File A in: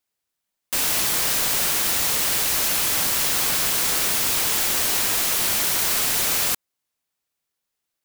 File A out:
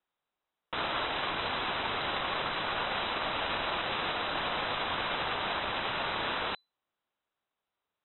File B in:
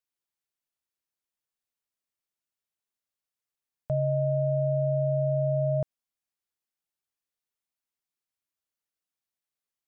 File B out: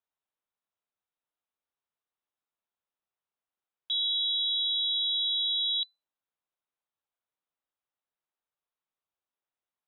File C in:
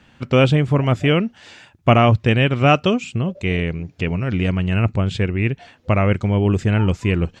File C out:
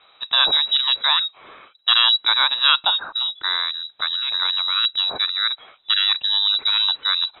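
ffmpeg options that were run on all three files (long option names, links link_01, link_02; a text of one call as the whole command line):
ffmpeg -i in.wav -af "aexciter=amount=3.2:drive=3.8:freq=2800,alimiter=limit=-3.5dB:level=0:latency=1:release=13,lowpass=frequency=3400:width_type=q:width=0.5098,lowpass=frequency=3400:width_type=q:width=0.6013,lowpass=frequency=3400:width_type=q:width=0.9,lowpass=frequency=3400:width_type=q:width=2.563,afreqshift=-4000,volume=-3dB" out.wav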